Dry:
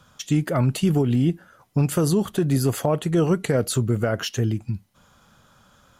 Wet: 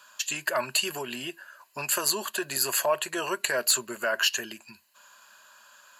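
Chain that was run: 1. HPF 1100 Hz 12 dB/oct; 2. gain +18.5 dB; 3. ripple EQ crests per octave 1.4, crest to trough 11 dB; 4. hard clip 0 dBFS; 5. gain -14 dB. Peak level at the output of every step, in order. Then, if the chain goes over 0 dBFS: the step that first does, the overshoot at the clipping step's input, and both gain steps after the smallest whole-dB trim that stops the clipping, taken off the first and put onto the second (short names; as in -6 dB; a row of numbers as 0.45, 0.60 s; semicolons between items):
-14.5, +4.0, +6.5, 0.0, -14.0 dBFS; step 2, 6.5 dB; step 2 +11.5 dB, step 5 -7 dB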